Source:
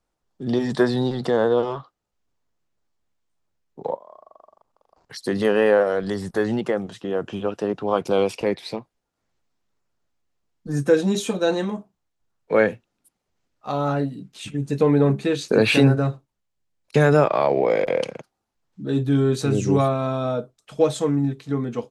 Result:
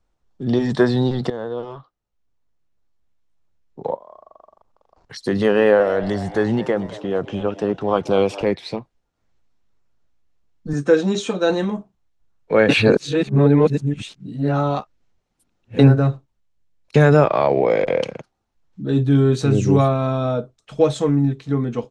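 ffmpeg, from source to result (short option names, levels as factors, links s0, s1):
-filter_complex "[0:a]asettb=1/sr,asplit=3[s0][s1][s2];[s0]atrim=end=5.344[s3];[s1]atrim=start=5.34:end=8.43,asetpts=PTS-STARTPTS,afade=t=in:d=0.004:c=qsin,afade=t=out:st=3.086:d=0.004:c=qsin,asplit=6[s4][s5][s6][s7][s8][s9];[s5]adelay=223,afreqshift=97,volume=0.141[s10];[s6]adelay=446,afreqshift=194,volume=0.0794[s11];[s7]adelay=669,afreqshift=291,volume=0.0442[s12];[s8]adelay=892,afreqshift=388,volume=0.0248[s13];[s9]adelay=1115,afreqshift=485,volume=0.014[s14];[s4][s10][s11][s12][s13][s14]amix=inputs=6:normalize=0,atrim=end_sample=136269[s15];[s2]atrim=start=8.426[s16];[s3][s15]acrossfade=d=0.004:c1=hsin:c2=qsin[s17];[s17][s16]acrossfade=d=0.004:c1=qsin:c2=hsin,asettb=1/sr,asplit=3[s18][s19][s20];[s18]atrim=end=10.734[s21];[s19]atrim=start=10.73:end=11.5,asetpts=PTS-STARTPTS,afade=t=in:d=0.004:c=qsin,afade=t=out:st=0.766:d=0.004:c=qsin,highpass=110,equalizer=f=130:t=q:w=4:g=-9,equalizer=f=220:t=q:w=4:g=-4,equalizer=f=1300:t=q:w=4:g=4,lowpass=f=8600:w=0.5412,lowpass=f=8600:w=1.3066[s22];[s20]atrim=start=11.496[s23];[s21][s22]acrossfade=d=0.004:c1=hsin:c2=qsin[s24];[s24][s23]acrossfade=d=0.004:c1=qsin:c2=hsin,asplit=4[s25][s26][s27][s28];[s25]atrim=end=1.3,asetpts=PTS-STARTPTS,afade=t=out:st=1.296:d=0.004:c=hsin:silence=0.223872[s29];[s26]atrim=start=1.3:end=12.692,asetpts=PTS-STARTPTS,afade=t=in:d=2.58:silence=0.223872[s30];[s27]atrim=start=12.688:end=15.792,asetpts=PTS-STARTPTS,areverse[s31];[s28]atrim=start=15.788[s32];[s29][s30]concat=n=2:v=0:a=1[s33];[s33][s31]acrossfade=d=0.004:c1=hsin:c2=hsin[s34];[s34][s32]acrossfade=d=0.004:c1=hsin:c2=hsin,lowpass=7000,lowshelf=f=92:g=11,bandreject=f=4800:w=24,volume=1.26"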